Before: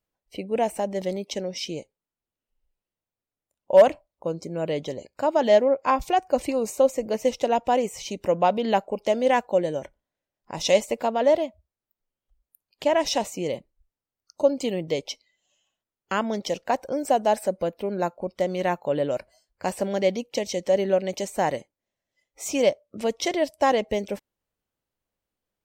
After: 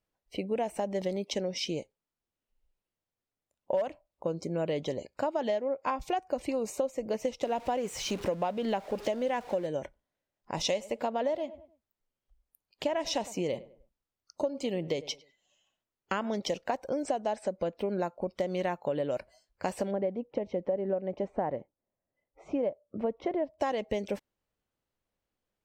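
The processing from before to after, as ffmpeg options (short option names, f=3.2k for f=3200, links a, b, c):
-filter_complex "[0:a]asettb=1/sr,asplit=3[a][b][c];[a]atrim=end=7.434[d];[b]atrim=start=7.43:end=9.67,asetpts=PTS-STARTPTS,afade=t=in:d=0.004:c=qsin,afade=t=out:st=2.236:d=0.004:c=qsin,aeval=exprs='val(0)+0.5*0.015*sgn(val(0))':c=same[e];[c]atrim=start=9.666[f];[d][e]acrossfade=d=0.004:c1=hsin:c2=qsin[g];[g][f]acrossfade=d=0.004:c1=qsin:c2=hsin,asettb=1/sr,asplit=3[h][i][j];[h]atrim=end=10.584[k];[i]atrim=start=10.58:end=16.35,asetpts=PTS-STARTPTS,afade=t=in:d=0.004:c=qsin,afade=t=out:st=5.766:d=0.004:c=qsin,asplit=2[l][m];[m]adelay=101,lowpass=f=2k:p=1,volume=-20.5dB,asplit=2[n][o];[o]adelay=101,lowpass=f=2k:p=1,volume=0.33,asplit=2[p][q];[q]adelay=101,lowpass=f=2k:p=1,volume=0.33[r];[l][n][p][r]amix=inputs=4:normalize=0,atrim=end_sample=254457[s];[j]atrim=start=16.346[t];[k][s]acrossfade=d=0.004:c1=hsin:c2=qsin[u];[u][t]acrossfade=d=0.004:c1=qsin:c2=hsin,asettb=1/sr,asplit=3[v][w][x];[v]atrim=end=17.034[y];[w]atrim=start=17.03:end=17.79,asetpts=PTS-STARTPTS,afade=t=in:d=0.004:c=qsin,afade=t=out:st=0.756:d=0.004:c=qsin,lowpass=f=8.5k:w=0.5412,lowpass=f=8.5k:w=1.3066[z];[x]atrim=start=17.786[aa];[y][z]acrossfade=d=0.004:c1=hsin:c2=qsin[ab];[ab][aa]acrossfade=d=0.004:c1=qsin:c2=hsin,asplit=3[ac][ad][ae];[ac]afade=t=out:st=19.9:d=0.02[af];[ad]lowpass=1.1k,afade=t=in:st=19.9:d=0.02,afade=t=out:st=23.58:d=0.02[ag];[ae]afade=t=in:st=23.58:d=0.02[ah];[af][ag][ah]amix=inputs=3:normalize=0,highshelf=f=8.2k:g=-9,acompressor=threshold=-27dB:ratio=10"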